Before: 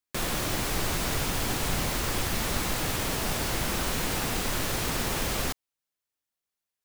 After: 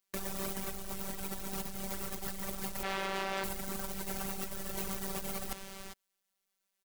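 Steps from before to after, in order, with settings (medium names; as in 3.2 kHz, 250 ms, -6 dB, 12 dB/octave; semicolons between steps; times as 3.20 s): robot voice 193 Hz; 2.83–3.44 s: tone controls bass -15 dB, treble -13 dB; on a send: delay 407 ms -22 dB; on the sum: peak limiter -13 dBFS, peak gain reduction 4 dB; wavefolder -22 dBFS; compressor with a negative ratio -40 dBFS, ratio -1; trim +2 dB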